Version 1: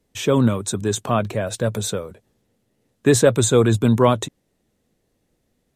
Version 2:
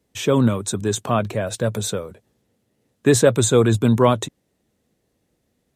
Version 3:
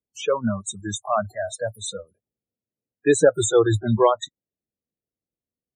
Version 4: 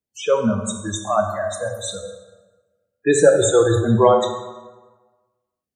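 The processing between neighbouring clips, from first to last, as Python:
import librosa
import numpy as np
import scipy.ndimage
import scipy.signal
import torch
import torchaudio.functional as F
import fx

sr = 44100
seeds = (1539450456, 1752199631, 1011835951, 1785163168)

y1 = scipy.signal.sosfilt(scipy.signal.butter(2, 47.0, 'highpass', fs=sr, output='sos'), x)
y2 = fx.noise_reduce_blind(y1, sr, reduce_db=25)
y2 = fx.spec_topn(y2, sr, count=32)
y3 = fx.rev_plate(y2, sr, seeds[0], rt60_s=1.3, hf_ratio=0.65, predelay_ms=0, drr_db=3.0)
y3 = F.gain(torch.from_numpy(y3), 1.5).numpy()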